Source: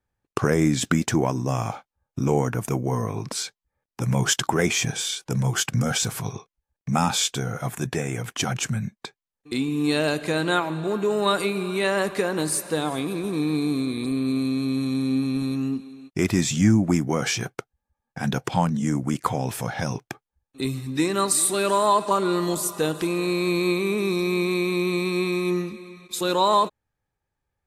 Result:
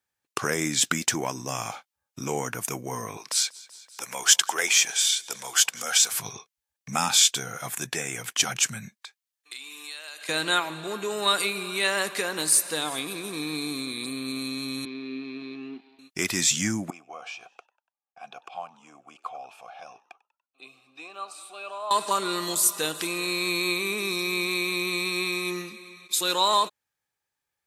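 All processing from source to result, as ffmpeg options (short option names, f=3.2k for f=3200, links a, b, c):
-filter_complex "[0:a]asettb=1/sr,asplit=3[a][b][c];[a]atrim=end=3.174[d];[b]atrim=start=3.17:end=6.11,asetpts=PTS-STARTPTS,afade=t=in:d=0.004:c=qsin,afade=t=out:st=2.936:d=0.004:c=qsin,highpass=490,aecho=1:1:190|380|570:0.0668|0.0327|0.016,atrim=end_sample=129654,acompressor=mode=upward:threshold=-43dB:ratio=2.5:attack=3.2:release=140:knee=2.83:detection=peak[e];[c]atrim=start=6.106[f];[d][e]acrossfade=d=0.004:c1=hsin:c2=qsin[g];[g][f]acrossfade=d=0.004:c1=qsin:c2=hsin,asettb=1/sr,asplit=3[h][i][j];[h]atrim=end=8.984[k];[i]atrim=start=8.98:end=10.29,asetpts=PTS-STARTPTS,afade=t=in:d=0.004:c=qsin,afade=t=out:st=1.306:d=0.004:c=qsin,highpass=870,acompressor=threshold=-39dB:ratio=5:attack=3.2:release=140:knee=1:detection=peak[l];[j]atrim=start=10.286[m];[k][l]acrossfade=d=0.004:c1=hsin:c2=qsin[n];[n][m]acrossfade=d=0.004:c1=qsin:c2=hsin,asettb=1/sr,asplit=3[o][p][q];[o]atrim=end=14.854[r];[p]atrim=start=14.85:end=15.99,asetpts=PTS-STARTPTS,afade=t=in:d=0.004:c=qsin,afade=t=out:st=1.136:d=0.004:c=qsin,aeval=exprs='sgn(val(0))*max(abs(val(0))-0.00668,0)':c=same,highpass=260,equalizer=f=370:t=q:w=4:g=8,equalizer=f=530:t=q:w=4:g=-8,equalizer=f=820:t=q:w=4:g=-4,equalizer=f=1.3k:t=q:w=4:g=-10,equalizer=f=1.8k:t=q:w=4:g=-5,equalizer=f=3k:t=q:w=4:g=-4,lowpass=f=3.1k:w=0.5412,lowpass=f=3.1k:w=1.3066[s];[q]atrim=start=15.986[t];[r][s]acrossfade=d=0.004:c1=hsin:c2=qsin[u];[u][t]acrossfade=d=0.004:c1=qsin:c2=hsin,asettb=1/sr,asplit=3[v][w][x];[v]atrim=end=16.904[y];[w]atrim=start=16.9:end=21.91,asetpts=PTS-STARTPTS,afade=t=in:d=0.004:c=qsin,afade=t=out:st=5.006:d=0.004:c=qsin,asplit=3[z][aa][ab];[z]bandpass=f=730:t=q:w=8,volume=0dB[ac];[aa]bandpass=f=1.09k:t=q:w=8,volume=-6dB[ad];[ab]bandpass=f=2.44k:t=q:w=8,volume=-9dB[ae];[ac][ad][ae]amix=inputs=3:normalize=0,asplit=4[af][ag][ah][ai];[ag]adelay=96,afreqshift=83,volume=-22dB[aj];[ah]adelay=192,afreqshift=166,volume=-28.6dB[ak];[ai]adelay=288,afreqshift=249,volume=-35.1dB[al];[af][aj][ak][al]amix=inputs=4:normalize=0,atrim=end_sample=220941[am];[x]atrim=start=21.906[an];[y][am]acrossfade=d=0.004:c1=hsin:c2=qsin[ao];[ao][an]acrossfade=d=0.004:c1=qsin:c2=hsin,highpass=f=200:p=1,tiltshelf=f=1.3k:g=-7.5,volume=-1dB"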